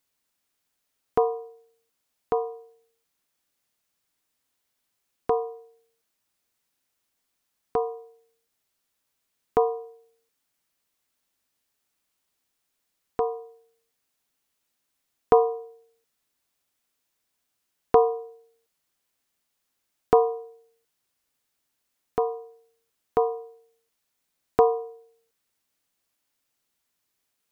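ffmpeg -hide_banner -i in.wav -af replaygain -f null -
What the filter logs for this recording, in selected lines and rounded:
track_gain = +10.8 dB
track_peak = 0.437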